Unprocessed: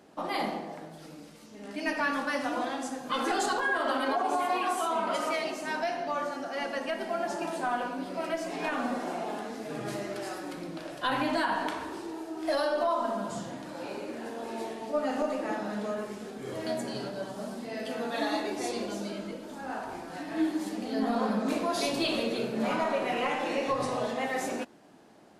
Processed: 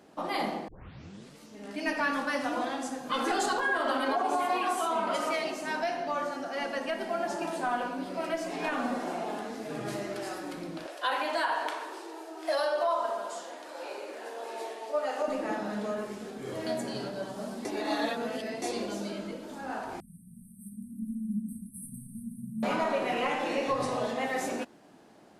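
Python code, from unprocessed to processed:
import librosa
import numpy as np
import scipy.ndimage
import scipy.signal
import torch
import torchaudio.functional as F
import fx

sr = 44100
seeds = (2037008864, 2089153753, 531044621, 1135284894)

y = fx.highpass(x, sr, hz=400.0, slope=24, at=(10.86, 15.28))
y = fx.brickwall_bandstop(y, sr, low_hz=240.0, high_hz=8100.0, at=(20.0, 22.63))
y = fx.edit(y, sr, fx.tape_start(start_s=0.68, length_s=0.7),
    fx.reverse_span(start_s=17.65, length_s=0.97), tone=tone)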